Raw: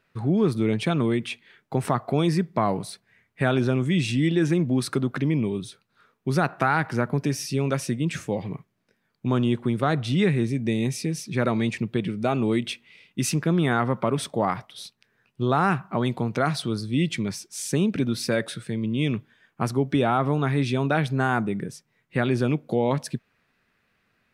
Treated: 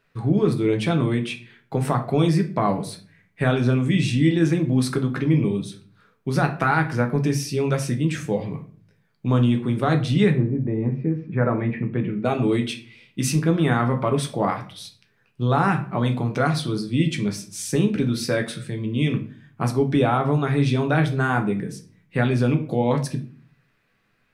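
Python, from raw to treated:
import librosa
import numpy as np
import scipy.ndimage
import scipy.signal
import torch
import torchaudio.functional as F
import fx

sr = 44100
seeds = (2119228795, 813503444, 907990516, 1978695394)

y = fx.lowpass(x, sr, hz=fx.line((10.3, 1200.0), (12.24, 2500.0)), slope=24, at=(10.3, 12.24), fade=0.02)
y = fx.room_shoebox(y, sr, seeds[0], volume_m3=34.0, walls='mixed', distance_m=0.36)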